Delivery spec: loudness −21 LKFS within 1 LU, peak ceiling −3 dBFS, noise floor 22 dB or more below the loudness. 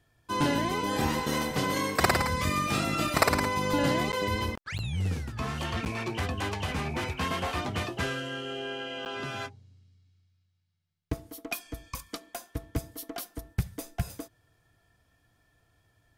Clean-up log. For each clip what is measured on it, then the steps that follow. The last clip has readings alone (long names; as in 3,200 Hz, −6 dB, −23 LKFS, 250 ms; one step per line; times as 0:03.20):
number of dropouts 4; longest dropout 9.5 ms; integrated loudness −30.5 LKFS; sample peak −9.0 dBFS; target loudness −21.0 LKFS
→ repair the gap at 0:04.12/0:04.78/0:05.85/0:09.05, 9.5 ms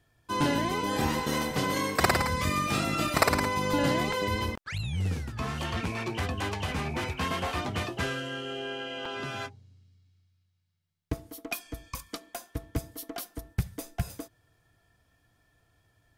number of dropouts 0; integrated loudness −30.5 LKFS; sample peak −9.0 dBFS; target loudness −21.0 LKFS
→ level +9.5 dB
brickwall limiter −3 dBFS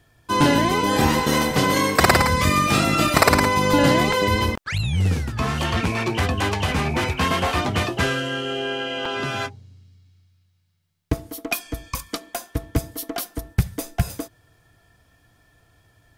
integrated loudness −21.0 LKFS; sample peak −3.0 dBFS; background noise floor −61 dBFS